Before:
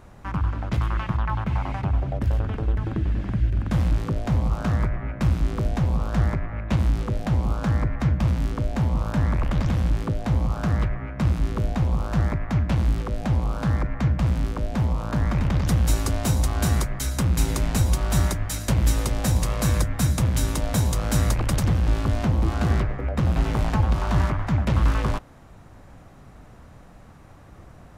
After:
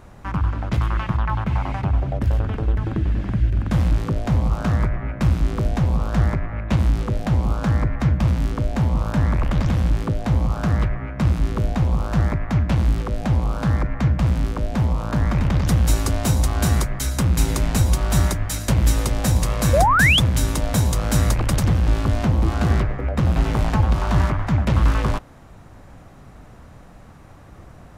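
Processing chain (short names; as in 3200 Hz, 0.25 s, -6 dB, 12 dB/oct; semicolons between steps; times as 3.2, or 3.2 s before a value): painted sound rise, 19.73–20.2, 510–3600 Hz -19 dBFS; gain +3 dB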